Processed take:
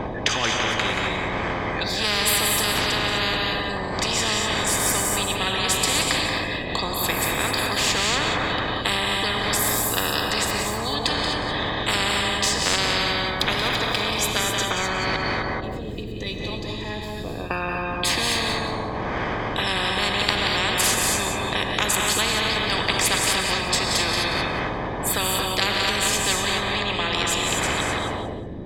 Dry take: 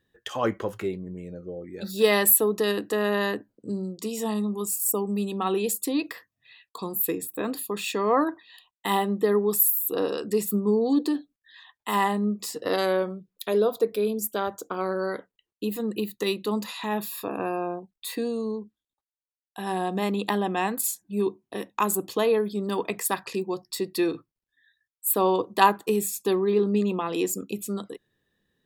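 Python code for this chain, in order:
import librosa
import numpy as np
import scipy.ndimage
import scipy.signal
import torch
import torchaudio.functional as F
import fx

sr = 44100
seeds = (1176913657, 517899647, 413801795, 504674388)

y = fx.dmg_wind(x, sr, seeds[0], corner_hz=120.0, level_db=-22.0)
y = fx.tone_stack(y, sr, knobs='10-0-1', at=(15.16, 17.51))
y = fx.rider(y, sr, range_db=5, speed_s=2.0)
y = fx.air_absorb(y, sr, metres=130.0)
y = fx.notch_comb(y, sr, f0_hz=1400.0)
y = fx.echo_feedback(y, sr, ms=180, feedback_pct=22, wet_db=-9.0)
y = fx.rev_gated(y, sr, seeds[1], gate_ms=280, shape='rising', drr_db=2.5)
y = fx.spectral_comp(y, sr, ratio=10.0)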